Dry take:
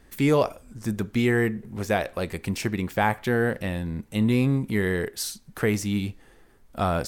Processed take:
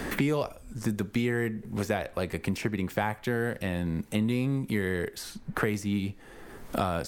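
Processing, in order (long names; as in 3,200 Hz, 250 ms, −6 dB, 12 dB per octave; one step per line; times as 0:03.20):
multiband upward and downward compressor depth 100%
level −5.5 dB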